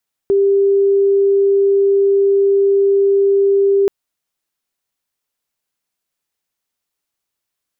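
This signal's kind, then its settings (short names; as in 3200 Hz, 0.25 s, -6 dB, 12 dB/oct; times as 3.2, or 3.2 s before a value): tone sine 396 Hz -9.5 dBFS 3.58 s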